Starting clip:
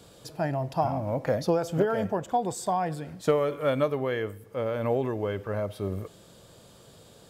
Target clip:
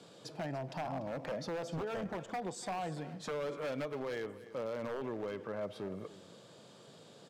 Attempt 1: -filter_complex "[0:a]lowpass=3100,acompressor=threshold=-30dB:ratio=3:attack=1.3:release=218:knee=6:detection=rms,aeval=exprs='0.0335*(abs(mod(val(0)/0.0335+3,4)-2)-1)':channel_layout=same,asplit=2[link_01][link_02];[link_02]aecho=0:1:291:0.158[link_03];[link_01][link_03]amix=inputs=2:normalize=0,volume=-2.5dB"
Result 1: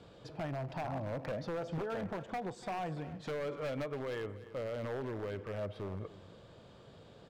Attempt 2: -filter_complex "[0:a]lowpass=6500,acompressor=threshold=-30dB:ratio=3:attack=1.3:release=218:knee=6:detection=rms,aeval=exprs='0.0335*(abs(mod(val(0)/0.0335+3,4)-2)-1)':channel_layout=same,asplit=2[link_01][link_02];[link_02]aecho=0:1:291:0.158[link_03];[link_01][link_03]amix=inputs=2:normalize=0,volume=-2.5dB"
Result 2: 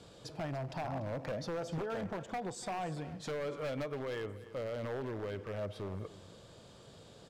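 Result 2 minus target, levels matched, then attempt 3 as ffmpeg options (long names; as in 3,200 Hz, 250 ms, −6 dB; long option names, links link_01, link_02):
125 Hz band +3.5 dB
-filter_complex "[0:a]lowpass=6500,acompressor=threshold=-30dB:ratio=3:attack=1.3:release=218:knee=6:detection=rms,highpass=frequency=140:width=0.5412,highpass=frequency=140:width=1.3066,aeval=exprs='0.0335*(abs(mod(val(0)/0.0335+3,4)-2)-1)':channel_layout=same,asplit=2[link_01][link_02];[link_02]aecho=0:1:291:0.158[link_03];[link_01][link_03]amix=inputs=2:normalize=0,volume=-2.5dB"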